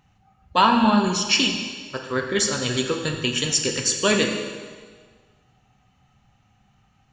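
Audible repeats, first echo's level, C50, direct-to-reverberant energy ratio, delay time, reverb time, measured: no echo, no echo, 5.0 dB, 3.0 dB, no echo, 1.6 s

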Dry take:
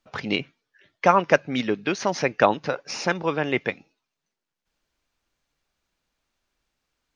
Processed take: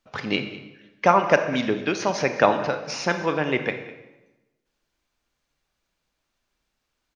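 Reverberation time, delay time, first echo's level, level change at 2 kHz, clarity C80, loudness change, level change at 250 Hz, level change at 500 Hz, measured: 1.0 s, 202 ms, -18.0 dB, +0.5 dB, 10.5 dB, +1.0 dB, +0.5 dB, +1.0 dB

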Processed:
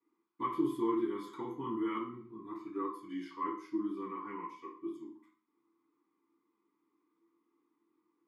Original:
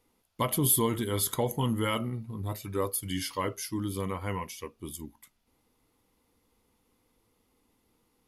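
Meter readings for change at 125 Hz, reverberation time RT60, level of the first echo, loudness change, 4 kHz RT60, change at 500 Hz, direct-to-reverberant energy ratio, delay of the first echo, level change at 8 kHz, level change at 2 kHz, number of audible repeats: -22.0 dB, 0.45 s, no echo, -7.5 dB, 0.40 s, -6.5 dB, -10.5 dB, no echo, under -35 dB, -11.5 dB, no echo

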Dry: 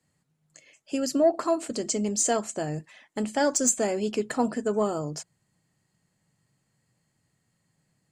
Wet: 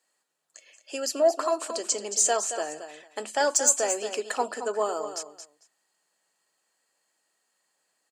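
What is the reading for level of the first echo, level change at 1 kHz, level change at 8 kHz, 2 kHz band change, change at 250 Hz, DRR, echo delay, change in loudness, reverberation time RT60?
-10.0 dB, +2.0 dB, +3.5 dB, +2.5 dB, -12.0 dB, no reverb, 224 ms, +0.5 dB, no reverb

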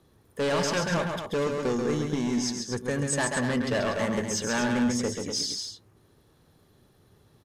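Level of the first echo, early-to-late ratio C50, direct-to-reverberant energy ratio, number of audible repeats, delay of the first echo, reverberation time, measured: -5.0 dB, no reverb, no reverb, 2, 135 ms, no reverb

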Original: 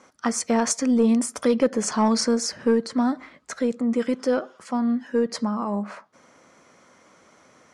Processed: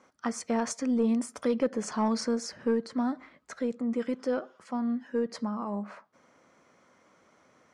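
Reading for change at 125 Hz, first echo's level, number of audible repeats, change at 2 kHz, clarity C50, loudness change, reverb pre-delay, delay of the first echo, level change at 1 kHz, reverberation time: no reading, no echo, no echo, -8.0 dB, no reverb, -7.5 dB, no reverb, no echo, -7.0 dB, no reverb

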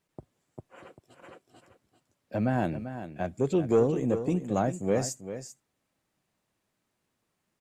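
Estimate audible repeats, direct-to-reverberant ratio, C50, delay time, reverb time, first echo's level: 1, no reverb, no reverb, 392 ms, no reverb, -11.0 dB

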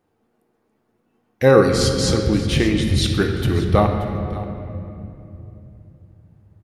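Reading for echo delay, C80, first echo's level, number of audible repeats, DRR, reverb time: 579 ms, 5.5 dB, -16.5 dB, 1, 2.5 dB, 2.9 s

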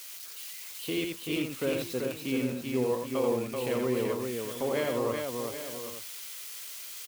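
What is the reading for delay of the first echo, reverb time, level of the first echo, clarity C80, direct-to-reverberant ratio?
86 ms, no reverb, -4.5 dB, no reverb, no reverb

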